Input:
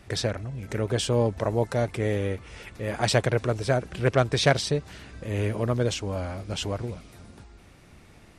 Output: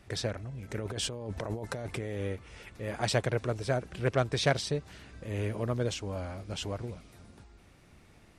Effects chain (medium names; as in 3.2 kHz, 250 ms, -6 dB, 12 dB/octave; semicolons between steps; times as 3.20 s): 0.78–2.21 s: compressor with a negative ratio -30 dBFS, ratio -1; trim -6 dB